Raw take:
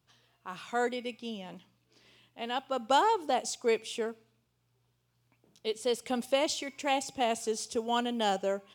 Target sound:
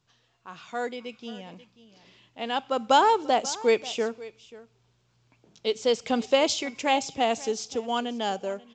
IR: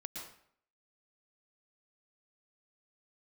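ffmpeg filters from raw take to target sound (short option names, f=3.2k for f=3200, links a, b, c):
-af "aecho=1:1:536:0.112,dynaudnorm=f=300:g=13:m=8dB,volume=-1.5dB" -ar 16000 -c:a pcm_mulaw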